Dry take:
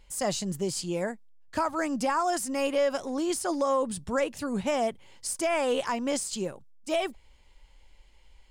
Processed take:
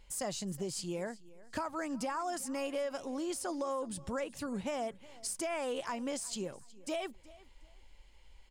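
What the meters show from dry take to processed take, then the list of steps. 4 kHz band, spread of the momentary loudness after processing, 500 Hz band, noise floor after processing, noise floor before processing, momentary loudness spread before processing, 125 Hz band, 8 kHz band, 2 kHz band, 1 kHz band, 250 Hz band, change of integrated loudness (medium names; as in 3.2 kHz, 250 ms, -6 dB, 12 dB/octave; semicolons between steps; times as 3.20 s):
-8.0 dB, 6 LU, -9.5 dB, -58 dBFS, -56 dBFS, 8 LU, -7.0 dB, -6.5 dB, -9.0 dB, -9.5 dB, -7.5 dB, -8.5 dB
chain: compression 2.5:1, threshold -35 dBFS, peak gain reduction 9 dB; feedback delay 368 ms, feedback 26%, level -21 dB; trim -2 dB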